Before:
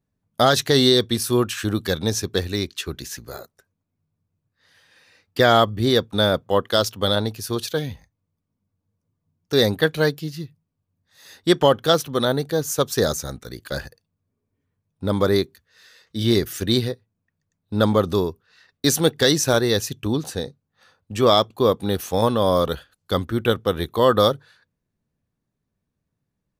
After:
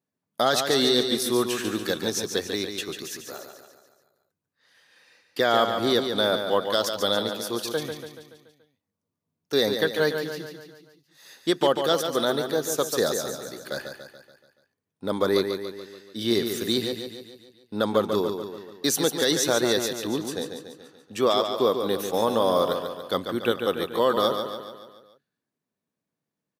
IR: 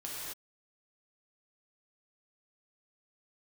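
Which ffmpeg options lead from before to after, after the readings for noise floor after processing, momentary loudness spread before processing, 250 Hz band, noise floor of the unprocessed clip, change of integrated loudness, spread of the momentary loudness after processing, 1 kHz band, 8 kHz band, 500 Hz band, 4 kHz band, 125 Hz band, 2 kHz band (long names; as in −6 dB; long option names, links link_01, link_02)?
below −85 dBFS, 15 LU, −5.0 dB, −79 dBFS, −4.0 dB, 15 LU, −3.5 dB, −2.0 dB, −3.5 dB, −3.5 dB, −13.5 dB, −3.5 dB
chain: -filter_complex "[0:a]highpass=240,alimiter=limit=-7.5dB:level=0:latency=1:release=73,asplit=2[link_01][link_02];[link_02]aecho=0:1:143|286|429|572|715|858:0.447|0.237|0.125|0.0665|0.0352|0.0187[link_03];[link_01][link_03]amix=inputs=2:normalize=0,volume=-3dB"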